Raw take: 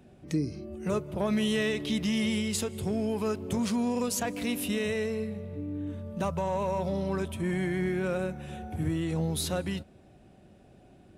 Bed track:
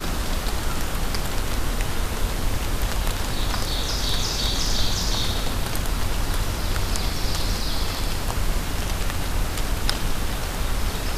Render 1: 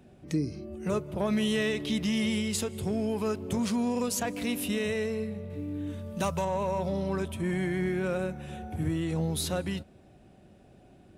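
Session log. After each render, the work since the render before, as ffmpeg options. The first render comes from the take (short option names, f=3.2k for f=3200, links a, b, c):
-filter_complex "[0:a]asettb=1/sr,asplit=3[a][b][c];[a]atrim=end=5.504[d];[b]atrim=start=5.5:end=6.45,asetpts=PTS-STARTPTS,afade=t=in:d=0.004:c=qsin,afade=t=out:st=0.946:d=0.004:c=qsin,highshelf=f=2.3k:g=10[e];[c]atrim=start=6.446[f];[d][e]acrossfade=d=0.004:c1=hsin:c2=qsin[g];[g][f]acrossfade=d=0.004:c1=qsin:c2=hsin"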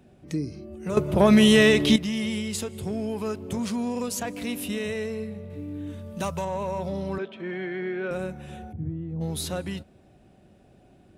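-filter_complex "[0:a]asettb=1/sr,asplit=3[a][b][c];[a]atrim=end=7.184[d];[b]atrim=start=7.18:end=8.11,asetpts=PTS-STARTPTS,afade=t=in:d=0.004:c=qsin,afade=t=out:st=0.926:d=0.004:c=qsin,highpass=f=220:w=0.5412,highpass=f=220:w=1.3066,equalizer=f=290:t=q:w=4:g=-8,equalizer=f=410:t=q:w=4:g=5,equalizer=f=990:t=q:w=4:g=-5,equalizer=f=1.5k:t=q:w=4:g=4,lowpass=f=3.9k:w=0.5412,lowpass=f=3.9k:w=1.3066[e];[c]atrim=start=8.106[f];[d][e]acrossfade=d=0.004:c1=hsin:c2=qsin[g];[g][f]acrossfade=d=0.004:c1=qsin:c2=hsin,asplit=3[h][i][j];[h]afade=t=out:st=8.71:d=0.02[k];[i]bandpass=f=130:t=q:w=0.88,afade=t=in:st=8.71:d=0.02,afade=t=out:st=9.2:d=0.02[l];[j]afade=t=in:st=9.2:d=0.02[m];[k][l][m]amix=inputs=3:normalize=0,asplit=3[n][o][p];[n]atrim=end=0.972[q];[o]atrim=start=0.968:end=1.962,asetpts=PTS-STARTPTS,volume=11.5dB[r];[p]atrim=start=1.958[s];[q][r]acrossfade=d=0.004:c1=hsin:c2=hsin[t];[t][s]acrossfade=d=0.004:c1=hsin:c2=hsin"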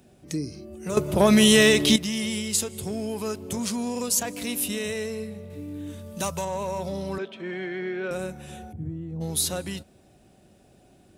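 -af "bass=f=250:g=-2,treble=f=4k:g=10"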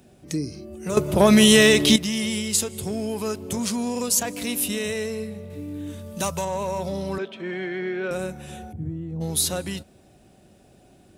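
-af "volume=2.5dB,alimiter=limit=-2dB:level=0:latency=1"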